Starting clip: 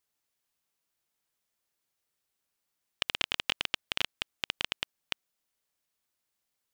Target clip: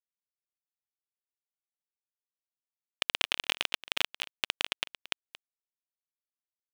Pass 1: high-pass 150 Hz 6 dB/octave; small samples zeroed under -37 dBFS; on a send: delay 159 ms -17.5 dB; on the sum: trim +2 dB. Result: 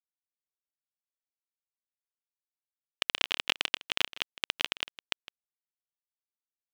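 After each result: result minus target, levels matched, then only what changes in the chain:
small samples zeroed: distortion -10 dB; echo 68 ms early
change: small samples zeroed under -25.5 dBFS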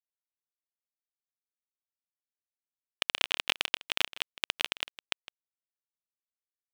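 echo 68 ms early
change: delay 227 ms -17.5 dB

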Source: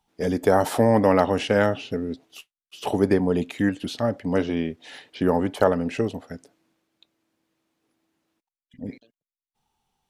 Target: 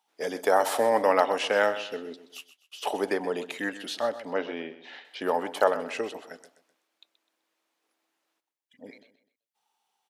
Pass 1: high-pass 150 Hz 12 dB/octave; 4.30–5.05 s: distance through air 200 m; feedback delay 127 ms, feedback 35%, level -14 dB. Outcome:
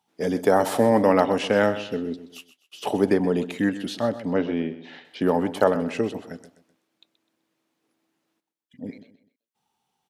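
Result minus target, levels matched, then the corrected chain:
125 Hz band +14.5 dB
high-pass 570 Hz 12 dB/octave; 4.30–5.05 s: distance through air 200 m; feedback delay 127 ms, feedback 35%, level -14 dB

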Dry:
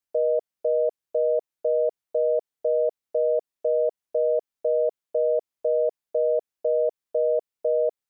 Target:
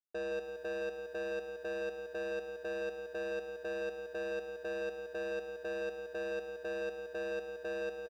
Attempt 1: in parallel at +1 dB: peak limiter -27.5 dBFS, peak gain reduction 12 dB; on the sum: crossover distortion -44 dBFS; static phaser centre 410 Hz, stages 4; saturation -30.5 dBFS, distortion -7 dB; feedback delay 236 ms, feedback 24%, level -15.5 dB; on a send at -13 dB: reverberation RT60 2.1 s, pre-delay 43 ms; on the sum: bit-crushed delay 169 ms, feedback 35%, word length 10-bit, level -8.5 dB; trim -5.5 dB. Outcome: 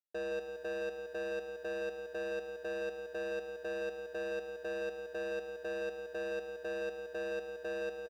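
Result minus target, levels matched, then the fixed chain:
crossover distortion: distortion +8 dB
in parallel at +1 dB: peak limiter -27.5 dBFS, peak gain reduction 12 dB; on the sum: crossover distortion -52 dBFS; static phaser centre 410 Hz, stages 4; saturation -30.5 dBFS, distortion -7 dB; feedback delay 236 ms, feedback 24%, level -15.5 dB; on a send at -13 dB: reverberation RT60 2.1 s, pre-delay 43 ms; on the sum: bit-crushed delay 169 ms, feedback 35%, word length 10-bit, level -8.5 dB; trim -5.5 dB

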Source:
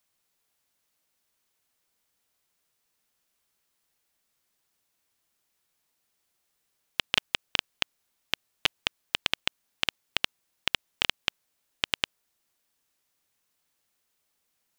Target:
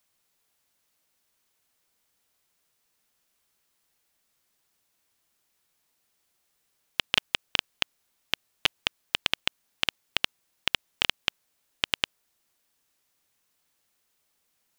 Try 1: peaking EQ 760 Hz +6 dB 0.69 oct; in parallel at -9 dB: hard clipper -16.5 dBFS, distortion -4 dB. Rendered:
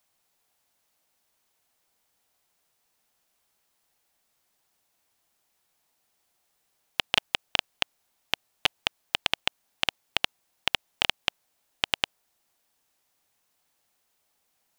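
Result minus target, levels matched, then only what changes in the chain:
1 kHz band +3.0 dB
remove: peaking EQ 760 Hz +6 dB 0.69 oct

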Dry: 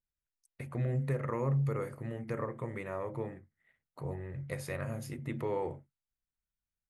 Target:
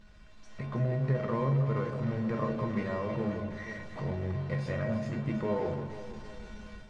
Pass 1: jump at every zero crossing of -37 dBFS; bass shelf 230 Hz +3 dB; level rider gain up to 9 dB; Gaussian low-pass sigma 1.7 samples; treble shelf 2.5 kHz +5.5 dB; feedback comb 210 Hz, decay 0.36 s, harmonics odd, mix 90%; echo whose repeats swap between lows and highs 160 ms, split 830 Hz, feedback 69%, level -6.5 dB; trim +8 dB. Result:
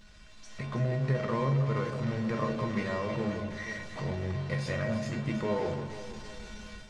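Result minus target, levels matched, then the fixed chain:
4 kHz band +7.5 dB
jump at every zero crossing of -37 dBFS; bass shelf 230 Hz +3 dB; level rider gain up to 9 dB; Gaussian low-pass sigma 1.7 samples; treble shelf 2.5 kHz -6 dB; feedback comb 210 Hz, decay 0.36 s, harmonics odd, mix 90%; echo whose repeats swap between lows and highs 160 ms, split 830 Hz, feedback 69%, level -6.5 dB; trim +8 dB

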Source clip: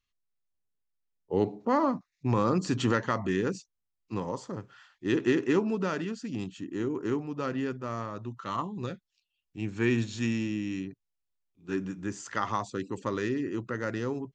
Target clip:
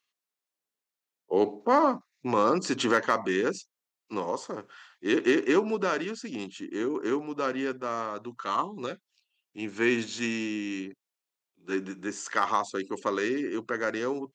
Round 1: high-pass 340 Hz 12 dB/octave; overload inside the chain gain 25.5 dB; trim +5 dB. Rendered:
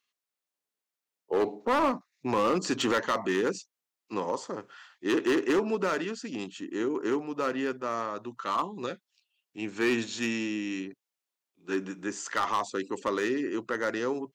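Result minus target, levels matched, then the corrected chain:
overload inside the chain: distortion +22 dB
high-pass 340 Hz 12 dB/octave; overload inside the chain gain 17.5 dB; trim +5 dB

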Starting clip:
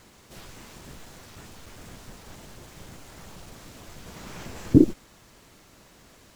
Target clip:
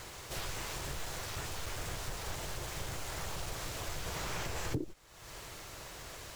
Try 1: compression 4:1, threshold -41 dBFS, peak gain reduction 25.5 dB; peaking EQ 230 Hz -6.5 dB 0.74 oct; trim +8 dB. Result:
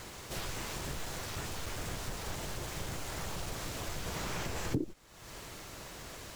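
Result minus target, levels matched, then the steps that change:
250 Hz band +3.5 dB
change: peaking EQ 230 Hz -15 dB 0.74 oct

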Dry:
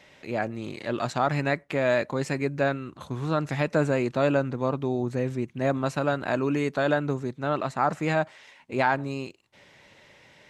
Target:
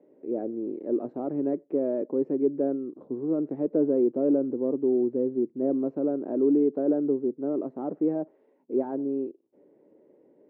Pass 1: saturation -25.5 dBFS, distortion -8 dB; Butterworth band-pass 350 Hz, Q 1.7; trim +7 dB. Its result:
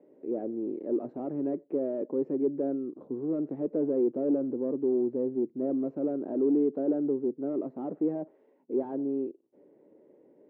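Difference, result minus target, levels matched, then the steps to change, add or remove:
saturation: distortion +8 dB
change: saturation -17 dBFS, distortion -16 dB

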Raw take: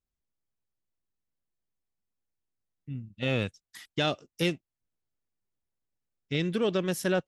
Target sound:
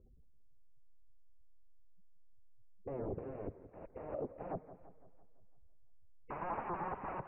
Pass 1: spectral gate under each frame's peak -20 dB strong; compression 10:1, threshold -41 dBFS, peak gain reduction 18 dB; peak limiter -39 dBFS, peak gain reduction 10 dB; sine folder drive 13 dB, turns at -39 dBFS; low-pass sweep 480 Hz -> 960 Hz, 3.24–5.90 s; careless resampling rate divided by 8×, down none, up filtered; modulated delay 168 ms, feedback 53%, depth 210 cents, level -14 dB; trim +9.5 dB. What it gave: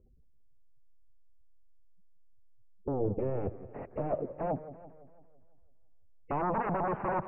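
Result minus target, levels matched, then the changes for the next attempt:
sine folder: distortion -14 dB
change: sine folder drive 13 dB, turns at -47 dBFS

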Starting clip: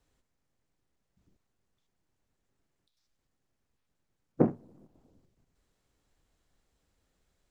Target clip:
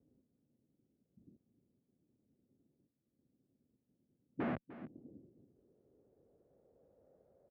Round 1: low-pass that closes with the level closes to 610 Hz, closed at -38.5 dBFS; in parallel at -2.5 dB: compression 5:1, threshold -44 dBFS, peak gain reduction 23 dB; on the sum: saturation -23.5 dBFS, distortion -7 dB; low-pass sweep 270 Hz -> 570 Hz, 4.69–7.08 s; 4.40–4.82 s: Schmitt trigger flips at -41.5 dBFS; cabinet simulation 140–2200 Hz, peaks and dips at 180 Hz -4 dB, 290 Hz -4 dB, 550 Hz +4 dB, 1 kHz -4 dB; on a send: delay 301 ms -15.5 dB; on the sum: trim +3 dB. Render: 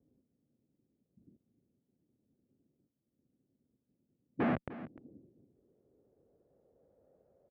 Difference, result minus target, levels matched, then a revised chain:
saturation: distortion -5 dB
low-pass that closes with the level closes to 610 Hz, closed at -38.5 dBFS; in parallel at -2.5 dB: compression 5:1, threshold -44 dBFS, peak gain reduction 23 dB; on the sum: saturation -33 dBFS, distortion -2 dB; low-pass sweep 270 Hz -> 570 Hz, 4.69–7.08 s; 4.40–4.82 s: Schmitt trigger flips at -41.5 dBFS; cabinet simulation 140–2200 Hz, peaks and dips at 180 Hz -4 dB, 290 Hz -4 dB, 550 Hz +4 dB, 1 kHz -4 dB; on a send: delay 301 ms -15.5 dB; on the sum: trim +3 dB

